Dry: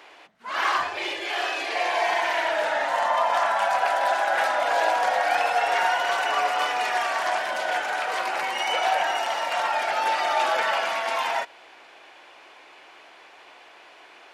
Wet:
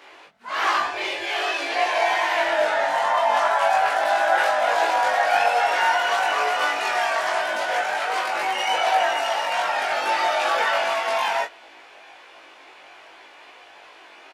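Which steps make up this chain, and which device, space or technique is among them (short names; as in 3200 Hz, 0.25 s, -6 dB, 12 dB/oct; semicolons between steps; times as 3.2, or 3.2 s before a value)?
double-tracked vocal (doubler 21 ms -2.5 dB; chorus 1.2 Hz, delay 17.5 ms, depth 2.3 ms); gain +3.5 dB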